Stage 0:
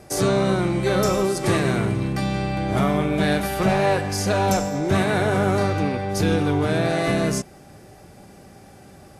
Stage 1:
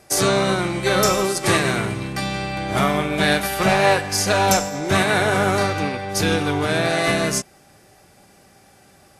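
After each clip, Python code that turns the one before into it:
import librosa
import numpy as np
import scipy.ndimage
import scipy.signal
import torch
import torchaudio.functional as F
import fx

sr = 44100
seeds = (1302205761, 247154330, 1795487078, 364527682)

y = fx.tilt_shelf(x, sr, db=-5.0, hz=740.0)
y = fx.upward_expand(y, sr, threshold_db=-36.0, expansion=1.5)
y = F.gain(torch.from_numpy(y), 4.5).numpy()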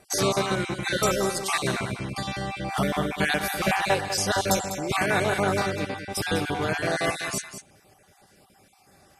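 y = fx.spec_dropout(x, sr, seeds[0], share_pct=31)
y = y + 10.0 ** (-10.5 / 20.0) * np.pad(y, (int(199 * sr / 1000.0), 0))[:len(y)]
y = F.gain(torch.from_numpy(y), -4.5).numpy()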